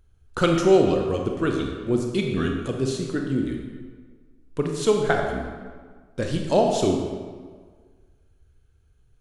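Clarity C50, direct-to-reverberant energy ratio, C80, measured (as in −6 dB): 3.5 dB, 1.5 dB, 5.0 dB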